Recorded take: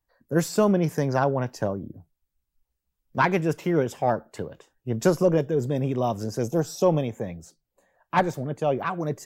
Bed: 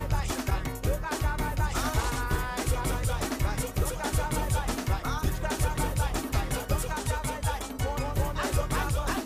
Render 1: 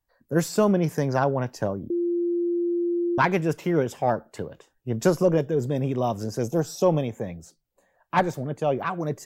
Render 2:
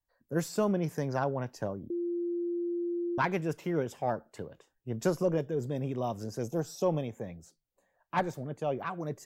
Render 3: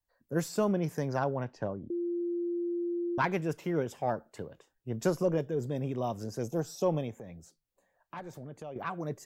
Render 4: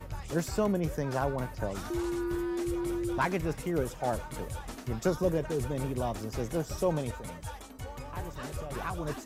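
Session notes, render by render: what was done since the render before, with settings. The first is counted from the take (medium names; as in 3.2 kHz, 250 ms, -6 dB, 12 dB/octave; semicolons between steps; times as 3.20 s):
1.90–3.18 s: bleep 346 Hz -21.5 dBFS
trim -8 dB
1.44–2.21 s: low-pass 3.7 kHz; 7.18–8.76 s: compression 3:1, threshold -42 dBFS
add bed -11.5 dB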